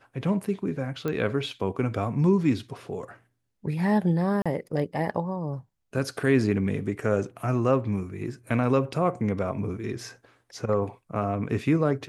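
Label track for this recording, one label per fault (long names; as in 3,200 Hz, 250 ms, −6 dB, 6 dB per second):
1.080000	1.080000	click −17 dBFS
4.420000	4.460000	drop-out 36 ms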